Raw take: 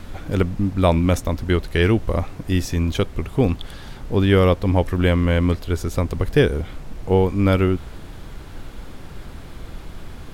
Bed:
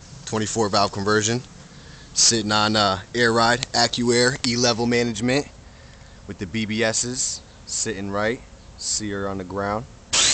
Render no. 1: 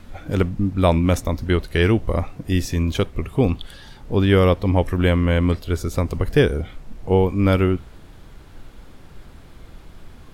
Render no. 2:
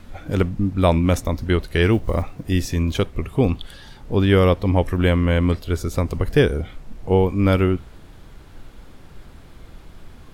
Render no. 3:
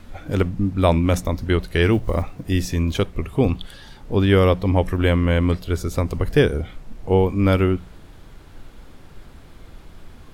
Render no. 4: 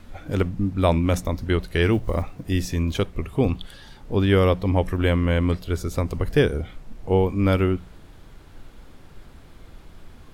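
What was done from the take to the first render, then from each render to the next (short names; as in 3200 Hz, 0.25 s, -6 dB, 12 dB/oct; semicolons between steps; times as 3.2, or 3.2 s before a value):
noise print and reduce 7 dB
1.92–2.52 block floating point 7-bit
notches 60/120/180 Hz
gain -2.5 dB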